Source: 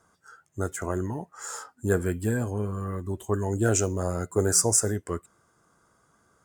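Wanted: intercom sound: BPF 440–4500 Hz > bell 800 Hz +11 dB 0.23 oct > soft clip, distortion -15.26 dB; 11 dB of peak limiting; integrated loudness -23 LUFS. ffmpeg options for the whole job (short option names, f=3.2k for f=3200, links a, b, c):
-af "alimiter=limit=-18.5dB:level=0:latency=1,highpass=440,lowpass=4.5k,equalizer=f=800:t=o:w=0.23:g=11,asoftclip=threshold=-27.5dB,volume=15dB"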